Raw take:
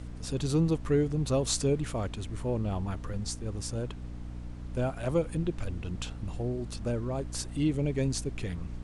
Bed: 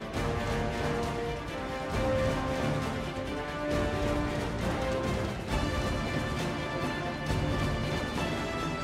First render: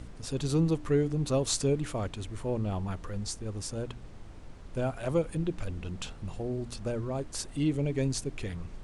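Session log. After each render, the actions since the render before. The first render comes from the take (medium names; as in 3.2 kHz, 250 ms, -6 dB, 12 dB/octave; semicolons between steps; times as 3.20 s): de-hum 60 Hz, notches 5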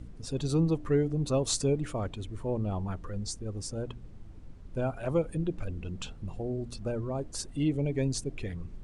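noise reduction 10 dB, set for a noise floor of -46 dBFS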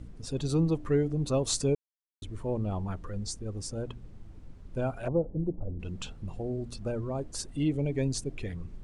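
1.75–2.22 s: mute; 5.08–5.80 s: steep low-pass 880 Hz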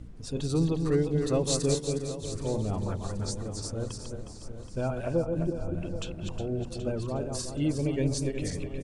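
backward echo that repeats 181 ms, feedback 57%, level -5 dB; feedback delay 776 ms, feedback 46%, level -13 dB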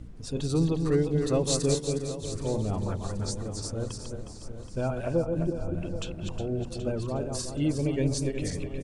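trim +1 dB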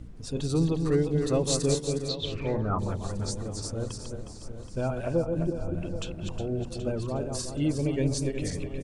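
2.08–2.78 s: resonant low-pass 4.6 kHz -> 1.2 kHz, resonance Q 9.3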